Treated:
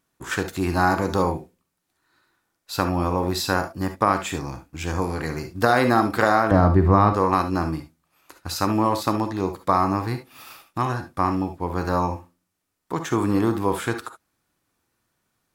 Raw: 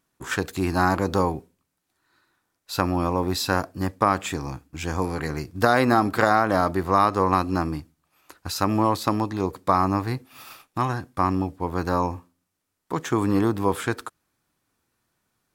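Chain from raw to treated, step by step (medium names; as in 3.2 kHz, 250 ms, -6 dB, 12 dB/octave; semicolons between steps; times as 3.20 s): 6.51–7.13 s: RIAA curve playback; gated-style reverb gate 90 ms rising, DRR 7.5 dB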